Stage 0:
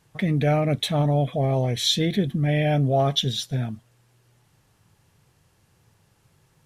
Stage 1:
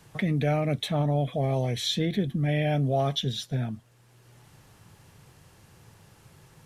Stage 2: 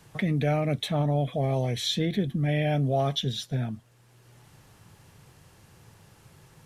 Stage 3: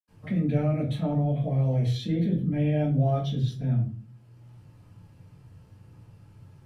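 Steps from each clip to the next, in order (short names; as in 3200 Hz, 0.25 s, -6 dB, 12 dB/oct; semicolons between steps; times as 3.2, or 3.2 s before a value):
three-band squash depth 40%; gain -4 dB
nothing audible
reverb RT60 0.40 s, pre-delay 77 ms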